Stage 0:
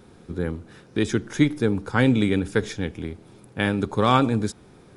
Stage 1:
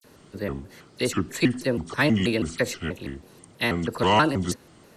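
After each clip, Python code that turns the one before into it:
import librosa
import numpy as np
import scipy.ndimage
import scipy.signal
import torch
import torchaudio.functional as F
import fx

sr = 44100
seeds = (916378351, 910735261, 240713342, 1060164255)

y = fx.tilt_eq(x, sr, slope=1.5)
y = fx.dispersion(y, sr, late='lows', ms=40.0, hz=2400.0)
y = fx.vibrato_shape(y, sr, shape='square', rate_hz=3.1, depth_cents=250.0)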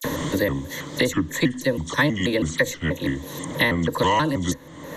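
y = fx.ripple_eq(x, sr, per_octave=1.1, db=12)
y = fx.band_squash(y, sr, depth_pct=100)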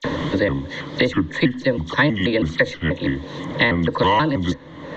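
y = scipy.signal.sosfilt(scipy.signal.butter(4, 4300.0, 'lowpass', fs=sr, output='sos'), x)
y = y * librosa.db_to_amplitude(3.0)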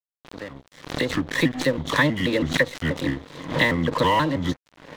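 y = fx.fade_in_head(x, sr, length_s=1.54)
y = np.sign(y) * np.maximum(np.abs(y) - 10.0 ** (-33.0 / 20.0), 0.0)
y = fx.pre_swell(y, sr, db_per_s=120.0)
y = y * librosa.db_to_amplitude(-2.0)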